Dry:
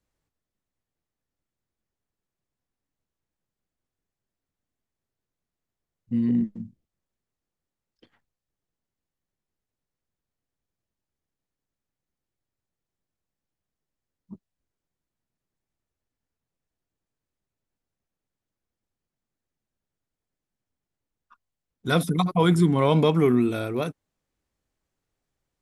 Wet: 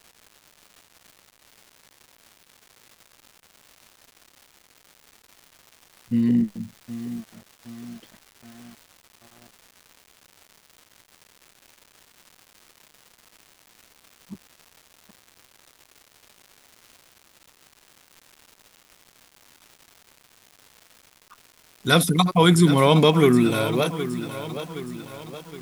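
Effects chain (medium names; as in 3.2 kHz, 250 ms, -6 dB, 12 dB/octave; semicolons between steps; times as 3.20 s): treble shelf 2.1 kHz +9 dB; crackle 390 per s -41 dBFS; bit-crushed delay 768 ms, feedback 55%, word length 7-bit, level -12 dB; trim +3 dB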